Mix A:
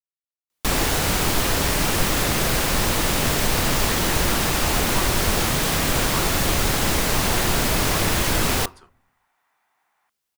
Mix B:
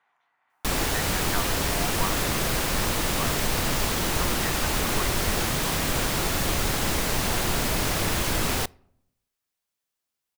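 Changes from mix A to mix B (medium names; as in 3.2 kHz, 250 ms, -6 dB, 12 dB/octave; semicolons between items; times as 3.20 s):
speech: entry -2.95 s; background -4.5 dB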